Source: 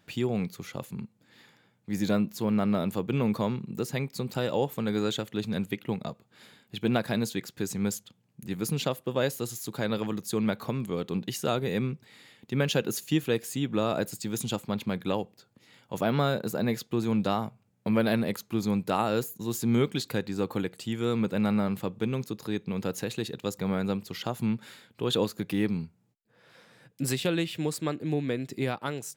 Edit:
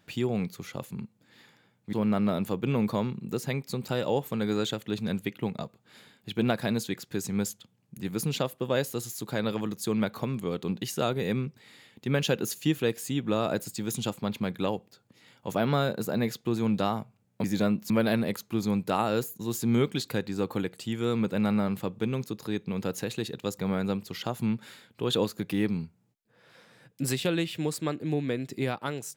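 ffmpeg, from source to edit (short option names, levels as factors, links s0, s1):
-filter_complex "[0:a]asplit=4[s0][s1][s2][s3];[s0]atrim=end=1.932[s4];[s1]atrim=start=2.388:end=17.902[s5];[s2]atrim=start=1.928:end=2.392[s6];[s3]atrim=start=17.898[s7];[s4][s5]acrossfade=d=0.004:c1=hsin:c2=hsin[s8];[s8][s6]acrossfade=d=0.004:c1=hsin:c2=hsin[s9];[s9][s7]acrossfade=d=0.004:c1=hsin:c2=hsin"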